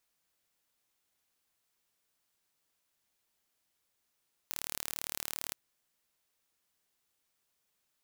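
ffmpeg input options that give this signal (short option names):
-f lavfi -i "aevalsrc='0.335*eq(mod(n,1173),0)':d=1.02:s=44100"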